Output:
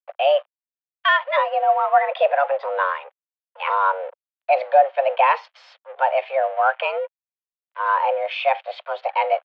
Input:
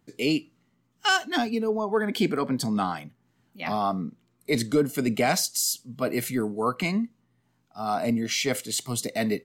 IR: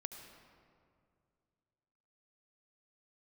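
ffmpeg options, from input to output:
-filter_complex "[0:a]tiltshelf=frequency=840:gain=4.5,asplit=2[link_01][link_02];[link_02]acompressor=threshold=-29dB:ratio=6,volume=-3dB[link_03];[link_01][link_03]amix=inputs=2:normalize=0,aeval=exprs='sgn(val(0))*max(abs(val(0))-0.00708,0)':channel_layout=same,highpass=frequency=300:width_type=q:width=0.5412,highpass=frequency=300:width_type=q:width=1.307,lowpass=frequency=2900:width_type=q:width=0.5176,lowpass=frequency=2900:width_type=q:width=0.7071,lowpass=frequency=2900:width_type=q:width=1.932,afreqshift=280,volume=5.5dB"

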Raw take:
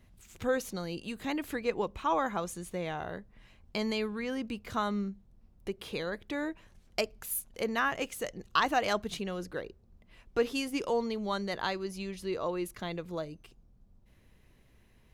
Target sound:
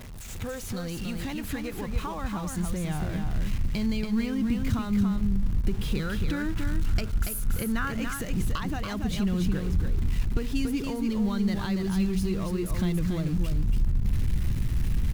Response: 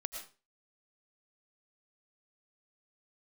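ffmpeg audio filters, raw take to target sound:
-filter_complex "[0:a]aeval=exprs='val(0)+0.5*0.0133*sgn(val(0))':channel_layout=same,acompressor=threshold=-32dB:ratio=4,asettb=1/sr,asplit=3[link_01][link_02][link_03];[link_01]atrim=end=5.994[link_04];[link_02]atrim=start=5.99:end=8.1,asetpts=PTS-STARTPTS,afade=type=in:duration=0.004:curve=qsin,afade=type=out:start_time=2.106:duration=0.004:curve=qsin,equalizer=frequency=1400:width=4.8:gain=11[link_05];[link_03]atrim=start=8.096[link_06];[link_04][link_05]acrossfade=duration=0.004:curve1=hsin:curve2=qsin[link_07];[link_07][link_06]acrossfade=duration=0.004:curve1=qsin:curve2=hsin,aecho=1:1:283:0.562,asubboost=boost=10.5:cutoff=170,aeval=exprs='val(0)*gte(abs(val(0)),0.00531)':channel_layout=same"

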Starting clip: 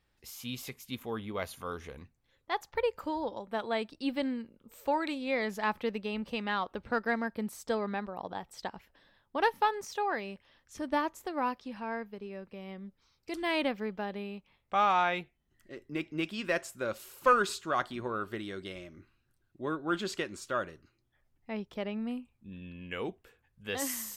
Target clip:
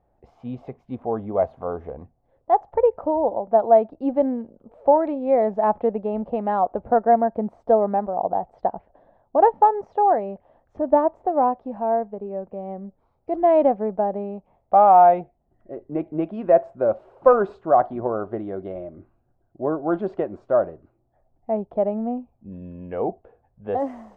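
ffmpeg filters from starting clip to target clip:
ffmpeg -i in.wav -af "lowpass=frequency=700:width_type=q:width=4.9,volume=7.5dB" out.wav

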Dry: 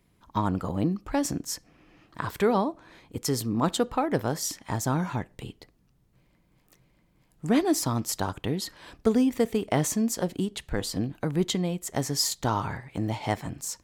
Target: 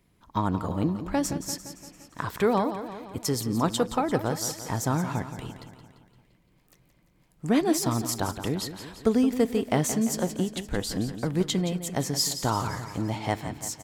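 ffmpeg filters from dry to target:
ffmpeg -i in.wav -af "aecho=1:1:172|344|516|688|860|1032:0.282|0.161|0.0916|0.0522|0.0298|0.017" out.wav

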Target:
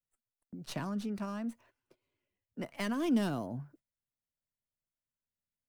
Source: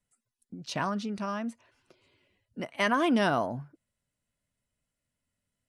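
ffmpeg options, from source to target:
ffmpeg -i in.wav -filter_complex "[0:a]aemphasis=mode=production:type=50fm,agate=range=-14dB:threshold=-58dB:ratio=16:detection=peak,equalizer=frequency=8900:width=0.37:gain=-7,acrossover=split=270|380|2400[link_01][link_02][link_03][link_04];[link_03]acompressor=threshold=-40dB:ratio=6[link_05];[link_04]aeval=exprs='max(val(0),0)':channel_layout=same[link_06];[link_01][link_02][link_05][link_06]amix=inputs=4:normalize=0,volume=-2dB" out.wav

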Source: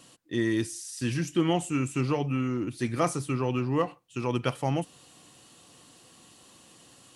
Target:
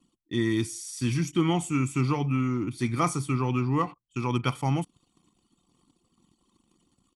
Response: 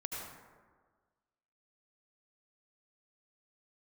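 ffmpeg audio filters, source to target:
-af "anlmdn=0.00398,aecho=1:1:0.9:0.6"

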